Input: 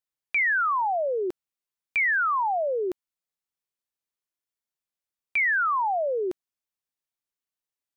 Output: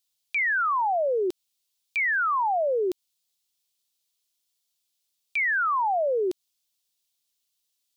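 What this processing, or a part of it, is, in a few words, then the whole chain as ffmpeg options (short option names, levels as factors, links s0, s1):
over-bright horn tweeter: -af "highshelf=f=2500:t=q:w=1.5:g=11.5,alimiter=limit=0.0668:level=0:latency=1:release=100,volume=1.33"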